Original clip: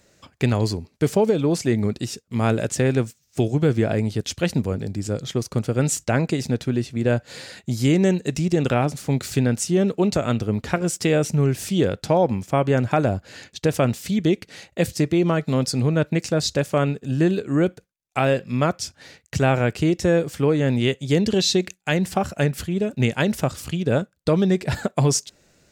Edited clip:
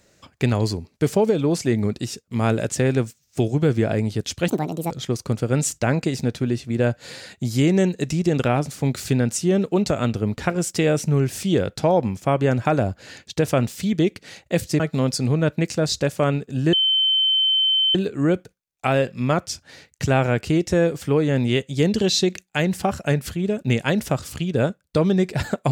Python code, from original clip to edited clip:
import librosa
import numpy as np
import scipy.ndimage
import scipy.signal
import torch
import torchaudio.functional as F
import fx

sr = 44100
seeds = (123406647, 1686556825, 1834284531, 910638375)

y = fx.edit(x, sr, fx.speed_span(start_s=4.48, length_s=0.69, speed=1.61),
    fx.cut(start_s=15.06, length_s=0.28),
    fx.insert_tone(at_s=17.27, length_s=1.22, hz=3080.0, db=-15.5), tone=tone)